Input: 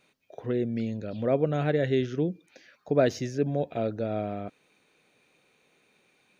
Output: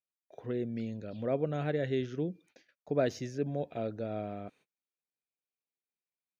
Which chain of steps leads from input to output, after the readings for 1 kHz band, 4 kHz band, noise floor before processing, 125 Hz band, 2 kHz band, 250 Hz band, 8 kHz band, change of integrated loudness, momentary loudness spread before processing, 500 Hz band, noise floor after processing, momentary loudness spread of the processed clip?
−6.5 dB, −6.5 dB, −68 dBFS, −6.5 dB, −6.5 dB, −6.5 dB, can't be measured, −6.5 dB, 10 LU, −6.5 dB, below −85 dBFS, 10 LU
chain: noise gate −53 dBFS, range −33 dB
level −6.5 dB

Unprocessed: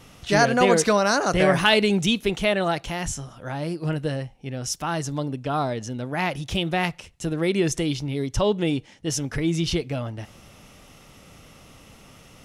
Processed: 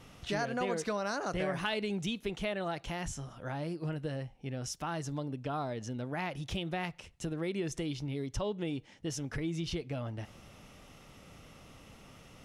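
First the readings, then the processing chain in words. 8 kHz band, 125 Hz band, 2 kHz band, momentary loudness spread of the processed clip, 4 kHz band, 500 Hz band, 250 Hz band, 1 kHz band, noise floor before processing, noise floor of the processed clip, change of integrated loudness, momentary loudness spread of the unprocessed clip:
−14.5 dB, −10.5 dB, −14.0 dB, 21 LU, −14.5 dB, −13.5 dB, −12.0 dB, −13.5 dB, −50 dBFS, −57 dBFS, −13.0 dB, 13 LU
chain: downward compressor 2.5 to 1, threshold −30 dBFS, peak gain reduction 11.5 dB
high-shelf EQ 5,200 Hz −5.5 dB
level −5 dB

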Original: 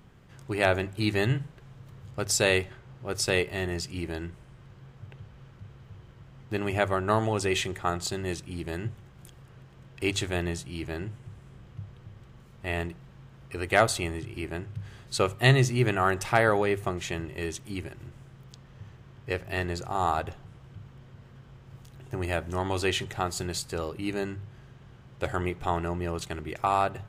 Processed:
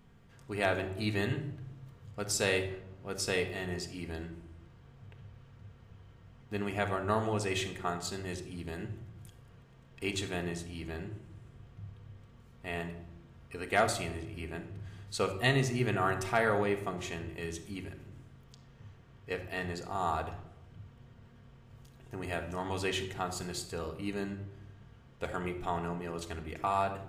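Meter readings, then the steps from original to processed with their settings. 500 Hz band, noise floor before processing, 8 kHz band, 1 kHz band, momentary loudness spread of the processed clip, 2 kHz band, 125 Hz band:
−5.5 dB, −52 dBFS, −6.0 dB, −5.5 dB, 23 LU, −5.5 dB, −7.0 dB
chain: rectangular room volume 2,400 cubic metres, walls furnished, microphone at 1.7 metres
level −7 dB

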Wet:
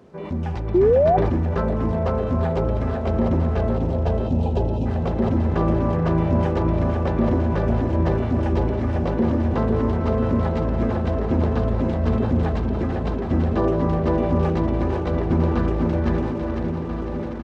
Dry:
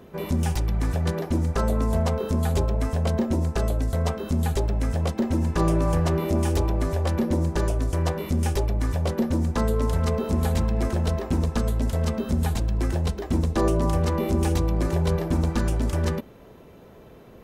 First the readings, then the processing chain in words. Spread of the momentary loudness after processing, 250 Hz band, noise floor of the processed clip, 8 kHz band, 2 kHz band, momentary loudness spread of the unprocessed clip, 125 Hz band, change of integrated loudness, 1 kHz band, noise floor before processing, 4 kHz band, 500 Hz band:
4 LU, +4.5 dB, −27 dBFS, below −15 dB, +1.5 dB, 3 LU, +2.0 dB, +3.0 dB, +5.0 dB, −47 dBFS, −6.0 dB, +6.0 dB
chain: feedback delay that plays each chunk backwards 668 ms, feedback 81%, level −9 dB
high-pass filter 68 Hz
time-frequency box erased 0:03.77–0:04.86, 1,000–2,400 Hz
low-shelf EQ 420 Hz −4.5 dB
automatic gain control gain up to 3.5 dB
repeating echo 500 ms, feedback 44%, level −4.5 dB
background noise violet −44 dBFS
sound drawn into the spectrogram rise, 0:00.74–0:01.17, 340–770 Hz −15 dBFS
head-to-tape spacing loss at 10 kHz 39 dB
level that may fall only so fast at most 29 dB per second
level +1.5 dB

